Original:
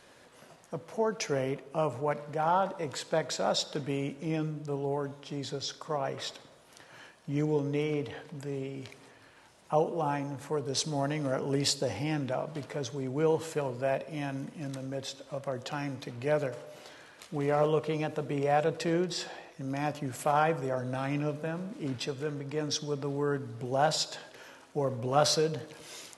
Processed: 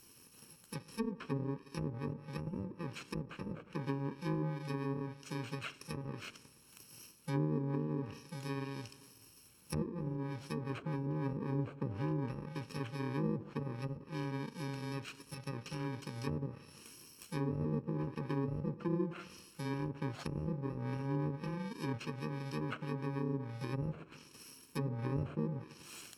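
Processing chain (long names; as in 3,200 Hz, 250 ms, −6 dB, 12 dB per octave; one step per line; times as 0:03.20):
samples in bit-reversed order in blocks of 64 samples
treble cut that deepens with the level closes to 570 Hz, closed at −26 dBFS
level −1 dB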